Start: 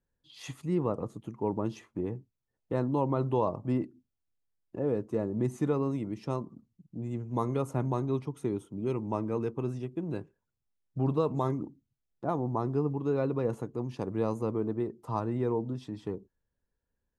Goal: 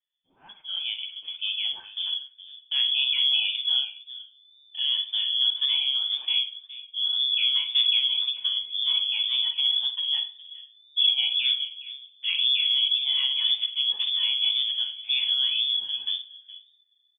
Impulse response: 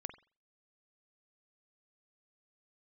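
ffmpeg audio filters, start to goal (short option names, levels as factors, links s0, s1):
-filter_complex "[0:a]asubboost=boost=10:cutoff=100,asplit=2[s0][s1];[s1]alimiter=limit=0.0794:level=0:latency=1,volume=0.841[s2];[s0][s2]amix=inputs=2:normalize=0,dynaudnorm=f=180:g=9:m=3.16,lowpass=f=3000:t=q:w=0.5098,lowpass=f=3000:t=q:w=0.6013,lowpass=f=3000:t=q:w=0.9,lowpass=f=3000:t=q:w=2.563,afreqshift=-3500,acrossover=split=1200[s3][s4];[s3]crystalizer=i=7.5:c=0[s5];[s4]aecho=1:1:416:0.158[s6];[s5][s6]amix=inputs=2:normalize=0[s7];[1:a]atrim=start_sample=2205[s8];[s7][s8]afir=irnorm=-1:irlink=0,flanger=delay=4.8:depth=7:regen=-1:speed=1.9:shape=sinusoidal,volume=0.531"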